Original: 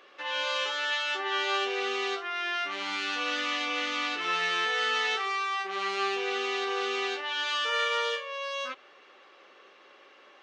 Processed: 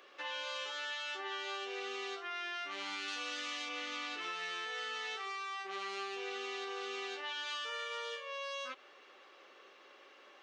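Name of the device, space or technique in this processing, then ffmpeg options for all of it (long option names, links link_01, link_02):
ASMR close-microphone chain: -filter_complex "[0:a]asettb=1/sr,asplit=3[link_01][link_02][link_03];[link_01]atrim=end=3.084[link_04];[link_02]atrim=start=3.08:end=3.69,asetpts=PTS-STARTPTS,afade=type=in:duration=0.004:curve=qsin,afade=type=out:start_time=0.606:duration=0.004:curve=qsin,aemphasis=mode=production:type=cd[link_05];[link_03]atrim=start=3.686[link_06];[link_04][link_05]acrossfade=duration=0.004:curve1=hsin:curve2=qsin[link_07];[link_07][link_06]acrossfade=duration=0.004:curve1=qsin:curve2=hsin,highpass=240,lowshelf=frequency=210:gain=6.5,acompressor=threshold=-34dB:ratio=6,highshelf=frequency=6200:gain=7,volume=-4.5dB"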